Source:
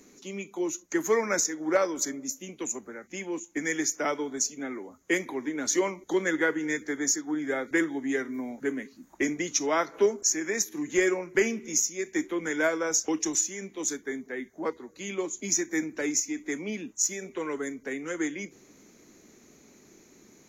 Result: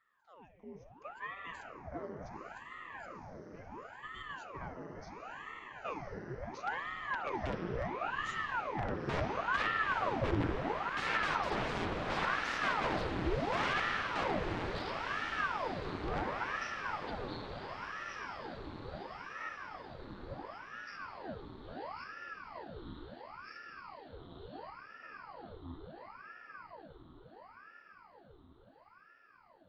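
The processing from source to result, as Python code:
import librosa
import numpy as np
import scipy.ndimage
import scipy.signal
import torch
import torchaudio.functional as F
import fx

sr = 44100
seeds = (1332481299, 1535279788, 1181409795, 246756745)

y = fx.speed_glide(x, sr, from_pct=85, to_pct=53)
y = fx.doppler_pass(y, sr, speed_mps=22, closest_m=16.0, pass_at_s=11.38)
y = fx.high_shelf(y, sr, hz=2600.0, db=-2.5)
y = (np.mod(10.0 ** (32.0 / 20.0) * y + 1.0, 2.0) - 1.0) / 10.0 ** (32.0 / 20.0)
y = fx.spacing_loss(y, sr, db_at_10k=35)
y = fx.echo_diffused(y, sr, ms=961, feedback_pct=64, wet_db=-4.5)
y = fx.rev_spring(y, sr, rt60_s=3.7, pass_ms=(52,), chirp_ms=35, drr_db=2.0)
y = fx.ring_lfo(y, sr, carrier_hz=830.0, swing_pct=90, hz=0.72)
y = y * librosa.db_to_amplitude(8.0)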